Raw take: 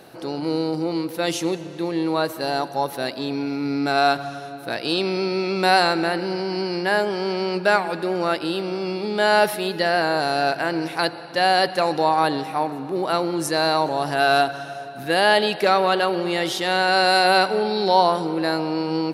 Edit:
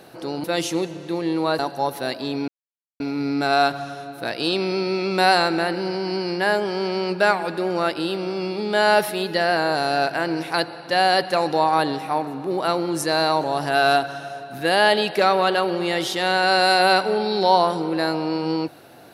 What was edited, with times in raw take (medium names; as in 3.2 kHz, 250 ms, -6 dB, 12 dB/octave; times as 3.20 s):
0.44–1.14 s: delete
2.29–2.56 s: delete
3.45 s: insert silence 0.52 s